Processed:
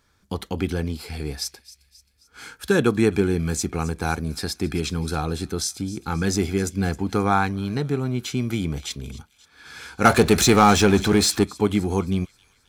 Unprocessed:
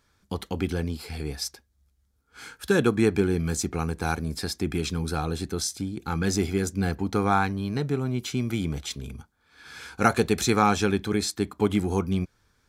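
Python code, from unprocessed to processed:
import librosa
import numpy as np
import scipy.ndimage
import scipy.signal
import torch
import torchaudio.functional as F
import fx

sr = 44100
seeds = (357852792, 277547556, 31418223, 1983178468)

y = fx.echo_wet_highpass(x, sr, ms=266, feedback_pct=49, hz=2600.0, wet_db=-16.5)
y = fx.power_curve(y, sr, exponent=0.7, at=(10.05, 11.44))
y = y * 10.0 ** (2.5 / 20.0)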